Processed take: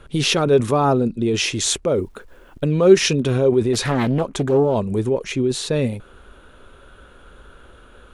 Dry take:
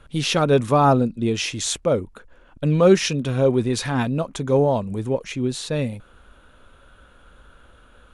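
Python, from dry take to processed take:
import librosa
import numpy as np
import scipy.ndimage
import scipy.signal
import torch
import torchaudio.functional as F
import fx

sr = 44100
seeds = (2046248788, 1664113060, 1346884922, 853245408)

p1 = fx.peak_eq(x, sr, hz=390.0, db=8.0, octaves=0.41)
p2 = fx.over_compress(p1, sr, threshold_db=-22.0, ratio=-0.5)
p3 = p1 + (p2 * librosa.db_to_amplitude(-3.0))
p4 = fx.quant_dither(p3, sr, seeds[0], bits=10, dither='none', at=(1.87, 2.66))
p5 = fx.doppler_dist(p4, sr, depth_ms=0.42, at=(3.73, 4.75))
y = p5 * librosa.db_to_amplitude(-3.0)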